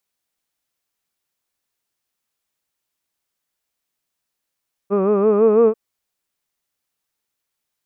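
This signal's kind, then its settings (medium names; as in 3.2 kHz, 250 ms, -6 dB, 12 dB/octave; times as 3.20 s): formant vowel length 0.84 s, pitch 193 Hz, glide +3 st, vibrato 6 Hz, F1 460 Hz, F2 1.2 kHz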